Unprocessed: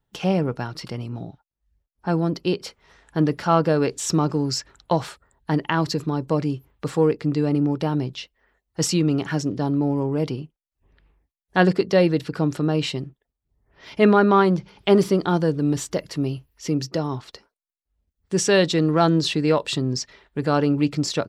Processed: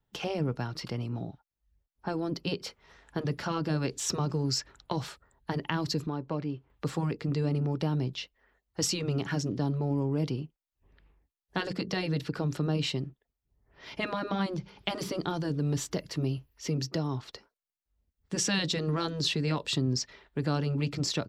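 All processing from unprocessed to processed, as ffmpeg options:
-filter_complex "[0:a]asettb=1/sr,asplit=3[a][b][c];[a]atrim=end=6.074[d];[b]atrim=start=6.07:end=6.7,asetpts=PTS-STARTPTS,afade=t=in:d=0.004:c=qsin,afade=t=out:st=0.626:d=0.004:c=qsin,lowpass=7k,lowshelf=f=340:g=-8,adynamicsmooth=sensitivity=1:basefreq=3.1k[e];[c]atrim=start=6.696[f];[d][e]acrossfade=d=0.004:c1=hsin:c2=qsin[g];[g][f]acrossfade=d=0.004:c1=qsin:c2=hsin,equalizer=f=9.2k:w=1.9:g=-5.5,afftfilt=real='re*lt(hypot(re,im),0.794)':imag='im*lt(hypot(re,im),0.794)':win_size=1024:overlap=0.75,acrossover=split=260|3000[h][i][j];[i]acompressor=threshold=-32dB:ratio=2.5[k];[h][k][j]amix=inputs=3:normalize=0,volume=-3dB"

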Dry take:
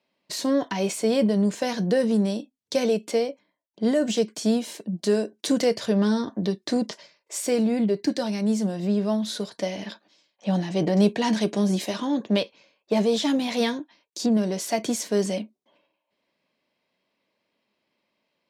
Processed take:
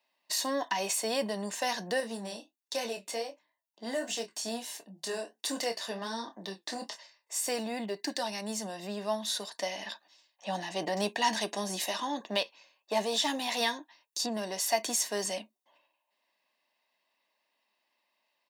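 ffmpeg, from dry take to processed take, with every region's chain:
-filter_complex "[0:a]asettb=1/sr,asplit=3[a][b][c];[a]atrim=end=2.004[d];[b]atrim=start=2:end=7.48,asetpts=PTS-STARTPTS,afade=t=in:d=0.004:c=qsin,afade=t=out:st=5.476:d=0.004:c=qsin,flanger=delay=5.9:depth=8.2:regen=-55:speed=1.4:shape=triangular,asplit=2[e][f];[f]adelay=26,volume=-8dB[g];[e][g]amix=inputs=2:normalize=0,atrim=end_sample=241668[h];[c]atrim=start=7.476[i];[d][h]acrossfade=d=0.004:c1=hsin:c2=qsin[j];[j][i]acrossfade=d=0.004:c1=qsin:c2=hsin,highpass=520,highshelf=f=9.7k:g=8.5,aecho=1:1:1.1:0.48,volume=-2dB"

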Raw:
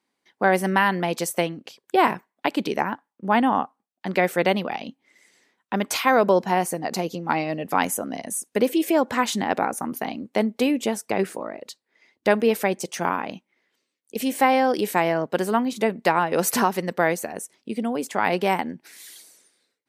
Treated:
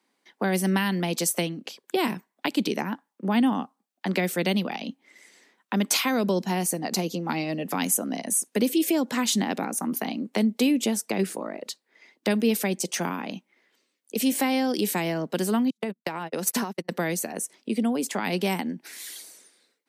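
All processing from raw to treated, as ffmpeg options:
-filter_complex "[0:a]asettb=1/sr,asplit=3[a][b][c];[a]atrim=end=15.704[d];[b]atrim=start=15.7:end=16.89,asetpts=PTS-STARTPTS,afade=t=in:d=0.004:c=qsin,afade=t=out:st=1.186:d=0.004:c=qsin,agate=range=-50dB:threshold=-25dB:ratio=16:release=100:detection=peak,acompressor=threshold=-23dB:ratio=6:attack=3.2:release=140:knee=1:detection=peak[e];[c]atrim=start=16.886[f];[d][e]acrossfade=d=0.004:c1=hsin:c2=qsin[g];[g][f]acrossfade=d=0.004:c1=qsin:c2=hsin,highpass=f=170:w=0.5412,highpass=f=170:w=1.3066,acrossover=split=280|3000[h][i][j];[i]acompressor=threshold=-36dB:ratio=4[k];[h][k][j]amix=inputs=3:normalize=0,volume=4.5dB"

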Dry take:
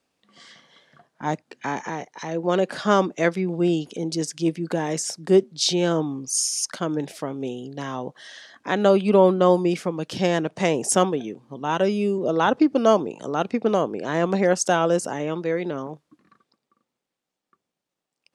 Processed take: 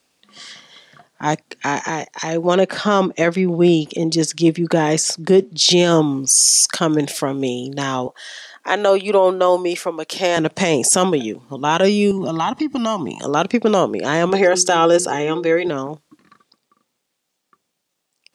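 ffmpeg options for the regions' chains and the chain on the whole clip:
-filter_complex "[0:a]asettb=1/sr,asplit=3[a][b][c];[a]atrim=end=2.544[d];[b]atrim=start=2.54:end=5.71,asetpts=PTS-STARTPTS,afade=t=in:d=0.004:c=qsin,afade=t=out:st=3.166:d=0.004:c=qsin,lowpass=f=3k:p=1,bandreject=f=1.6k:w=21[e];[c]atrim=start=5.706[f];[d][e]acrossfade=d=0.004:c1=hsin:c2=qsin[g];[g][f]acrossfade=d=0.004:c1=qsin:c2=hsin,asettb=1/sr,asplit=3[h][i][j];[h]atrim=end=8.074[k];[i]atrim=start=8.07:end=10.37,asetpts=PTS-STARTPTS,afade=t=in:d=0.004:c=qsin,afade=t=out:st=2.296:d=0.004:c=qsin,highpass=460,equalizer=f=4.7k:w=0.37:g=-6[l];[j]atrim=start=10.366[m];[k][l]acrossfade=d=0.004:c1=hsin:c2=qsin[n];[n][m]acrossfade=d=0.004:c1=qsin:c2=hsin,asettb=1/sr,asplit=3[o][p][q];[o]atrim=end=12.114[r];[p]atrim=start=12.11:end=13.21,asetpts=PTS-STARTPTS,afade=t=in:d=0.004:c=qsin,afade=t=out:st=1.096:d=0.004:c=qsin,aecho=1:1:1:0.88,atrim=end_sample=48510,acompressor=threshold=-26dB:ratio=4:attack=3.2:release=140:knee=1:detection=peak[s];[q]atrim=start=13.206[t];[r][s]acrossfade=d=0.004:c1=hsin:c2=qsin[u];[u][t]acrossfade=d=0.004:c1=qsin:c2=hsin,asettb=1/sr,asplit=3[v][w][x];[v]atrim=end=14.294[y];[w]atrim=start=14.29:end=15.68,asetpts=PTS-STARTPTS,afade=t=in:d=0.004:c=qsin,afade=t=out:st=1.386:d=0.004:c=qsin,highshelf=f=7.8k:g=-10,bandreject=f=60:t=h:w=6,bandreject=f=120:t=h:w=6,bandreject=f=180:t=h:w=6,bandreject=f=240:t=h:w=6,bandreject=f=300:t=h:w=6,bandreject=f=360:t=h:w=6,bandreject=f=420:t=h:w=6,bandreject=f=480:t=h:w=6,aecho=1:1:2.4:0.55,atrim=end_sample=61299[z];[x]atrim=start=15.676[aa];[y][z]acrossfade=d=0.004:c1=hsin:c2=qsin[ab];[ab][aa]acrossfade=d=0.004:c1=qsin:c2=hsin,highshelf=f=2.3k:g=8.5,dynaudnorm=f=360:g=21:m=11.5dB,alimiter=limit=-10dB:level=0:latency=1:release=13,volume=5.5dB"

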